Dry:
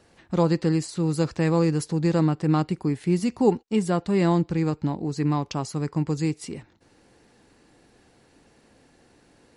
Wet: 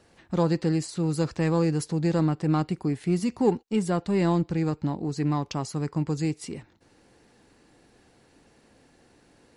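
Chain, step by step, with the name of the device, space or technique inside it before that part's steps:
parallel distortion (in parallel at −10 dB: hard clipping −24 dBFS, distortion −7 dB)
on the sum: level −3.5 dB

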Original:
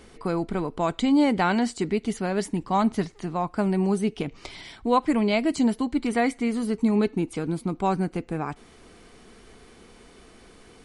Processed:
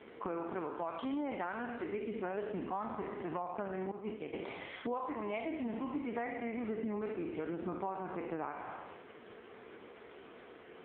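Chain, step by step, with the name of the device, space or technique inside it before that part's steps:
peak hold with a decay on every bin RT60 1.17 s
0:03.91–0:04.33: downward expander −14 dBFS
voicemail (band-pass filter 310–2,600 Hz; downward compressor 10 to 1, threshold −36 dBFS, peak gain reduction 21.5 dB; level +1.5 dB; AMR narrowband 4.75 kbit/s 8,000 Hz)

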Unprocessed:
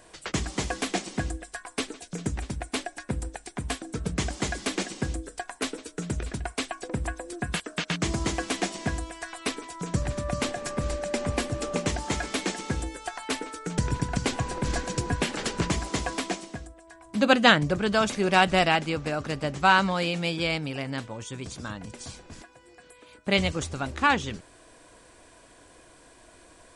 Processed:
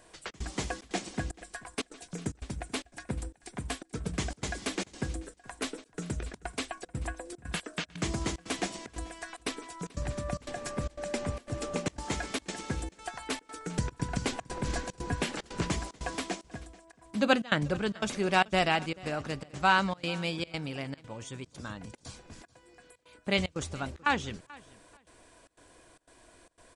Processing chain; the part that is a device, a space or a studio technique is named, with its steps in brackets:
trance gate with a delay (gate pattern "xxx.xxxx.x" 149 BPM −24 dB; repeating echo 435 ms, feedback 19%, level −22 dB)
level −4.5 dB

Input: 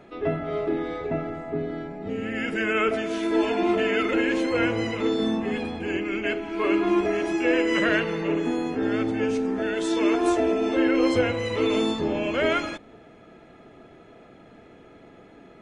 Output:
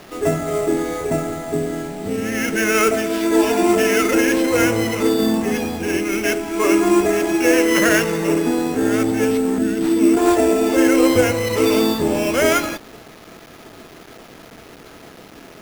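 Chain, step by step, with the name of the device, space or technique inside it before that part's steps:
0:09.58–0:10.17: octave-band graphic EQ 125/250/500/1,000/2,000/4,000/8,000 Hz +3/+9/−8/−11/−5/−10/+4 dB
early 8-bit sampler (sample-rate reduction 8,200 Hz, jitter 0%; bit reduction 8 bits)
level +7 dB

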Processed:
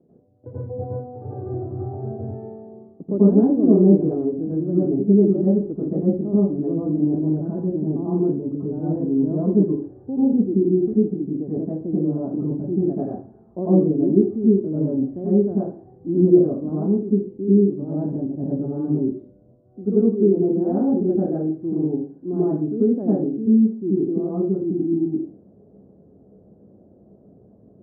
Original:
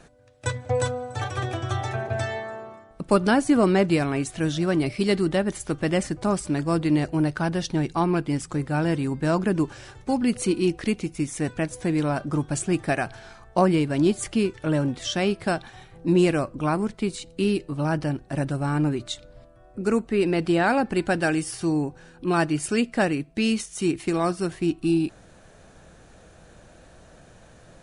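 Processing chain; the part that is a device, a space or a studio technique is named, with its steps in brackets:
next room (low-pass filter 370 Hz 24 dB per octave; convolution reverb RT60 0.40 s, pre-delay 82 ms, DRR −9 dB)
meter weighting curve A
level +6 dB

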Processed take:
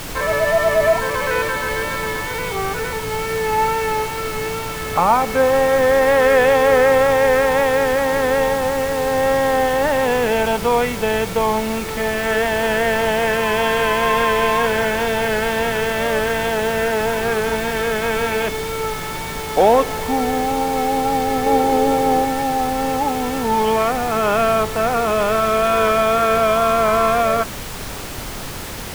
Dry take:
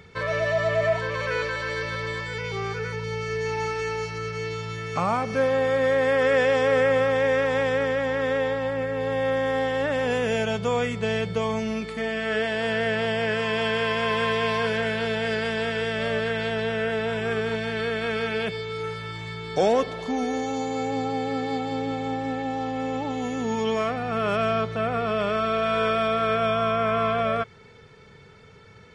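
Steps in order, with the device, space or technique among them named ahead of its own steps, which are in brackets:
horn gramophone (band-pass filter 210–3,100 Hz; parametric band 880 Hz +8.5 dB 0.36 octaves; tape wow and flutter 24 cents; pink noise bed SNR 11 dB)
0:21.46–0:22.25: parametric band 450 Hz +7.5 dB 1.4 octaves
level +6.5 dB

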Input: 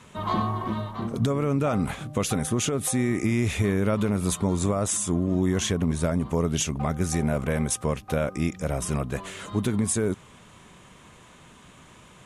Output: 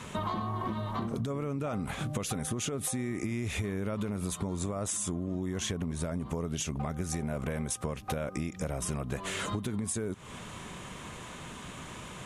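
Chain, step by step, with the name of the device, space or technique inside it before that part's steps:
serial compression, peaks first (downward compressor, threshold −33 dBFS, peak gain reduction 13 dB; downward compressor 2.5 to 1, threshold −39 dBFS, peak gain reduction 6.5 dB)
level +7 dB

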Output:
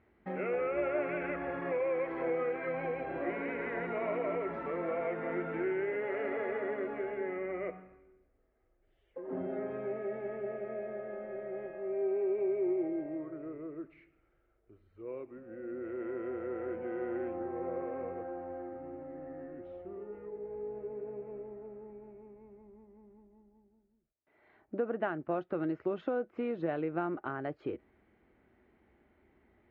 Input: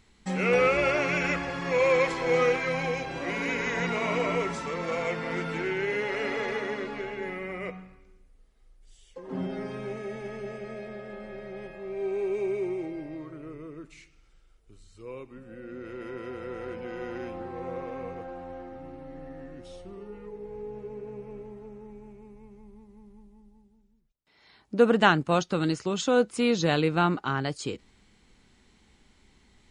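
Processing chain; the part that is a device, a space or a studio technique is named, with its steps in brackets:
bass amplifier (downward compressor 4 to 1, threshold −29 dBFS, peak gain reduction 13 dB; loudspeaker in its box 71–2,000 Hz, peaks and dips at 130 Hz −6 dB, 190 Hz −6 dB, 350 Hz +7 dB, 630 Hz +8 dB, 1,000 Hz −4 dB)
level −4 dB

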